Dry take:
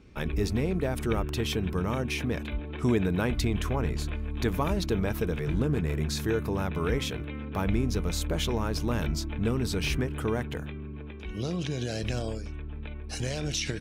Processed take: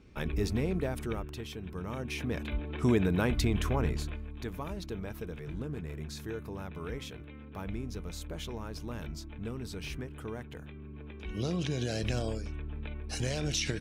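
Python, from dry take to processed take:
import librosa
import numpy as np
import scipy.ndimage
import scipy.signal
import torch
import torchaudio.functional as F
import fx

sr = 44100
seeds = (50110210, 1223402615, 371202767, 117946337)

y = fx.gain(x, sr, db=fx.line((0.79, -3.0), (1.53, -13.0), (2.55, -1.0), (3.88, -1.0), (4.4, -11.0), (10.49, -11.0), (11.38, -1.0)))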